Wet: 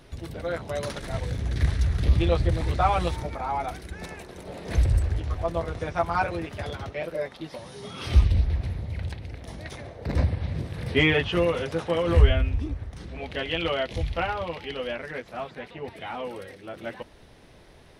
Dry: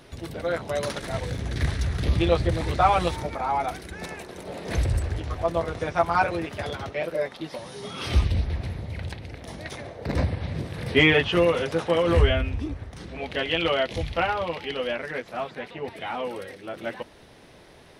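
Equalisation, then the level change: bass shelf 85 Hz +11 dB; -3.5 dB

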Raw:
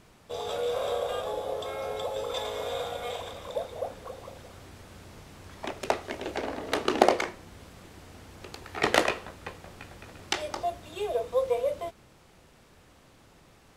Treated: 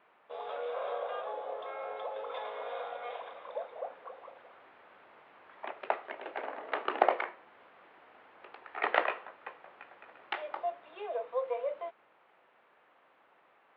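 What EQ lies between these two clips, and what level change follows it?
high-pass 730 Hz 12 dB/octave; Bessel low-pass 1.8 kHz, order 8; distance through air 57 m; 0.0 dB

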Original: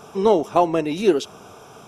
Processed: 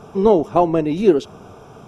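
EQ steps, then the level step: tilt EQ -2.5 dB/octave; 0.0 dB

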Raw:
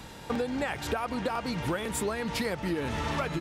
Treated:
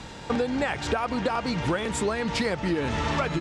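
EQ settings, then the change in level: low-pass 8.1 kHz 24 dB/octave; +4.5 dB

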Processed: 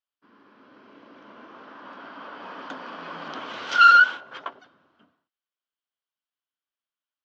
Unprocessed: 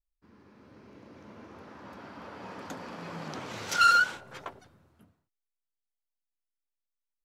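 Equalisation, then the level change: cabinet simulation 260–5200 Hz, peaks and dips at 270 Hz +6 dB, 650 Hz +4 dB, 1.1 kHz +8 dB, 1.5 kHz +8 dB, 3.1 kHz +10 dB; 0.0 dB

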